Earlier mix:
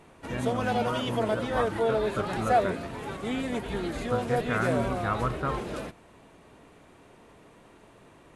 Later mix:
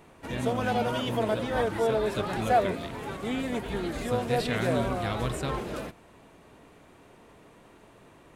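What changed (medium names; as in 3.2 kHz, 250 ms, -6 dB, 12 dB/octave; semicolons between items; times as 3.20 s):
speech: remove resonant low-pass 1.3 kHz, resonance Q 3.4; master: remove brick-wall FIR low-pass 12 kHz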